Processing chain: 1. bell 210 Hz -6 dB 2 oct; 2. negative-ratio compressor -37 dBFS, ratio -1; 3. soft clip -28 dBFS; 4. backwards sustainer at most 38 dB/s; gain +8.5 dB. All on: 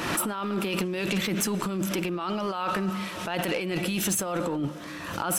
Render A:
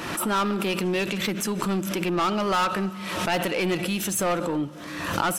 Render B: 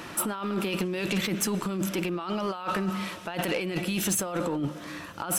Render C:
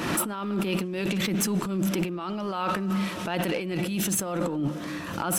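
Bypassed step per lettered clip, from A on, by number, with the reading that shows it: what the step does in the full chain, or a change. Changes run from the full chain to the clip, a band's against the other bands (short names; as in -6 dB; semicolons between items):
2, crest factor change +3.0 dB; 4, crest factor change -4.0 dB; 1, 125 Hz band +3.0 dB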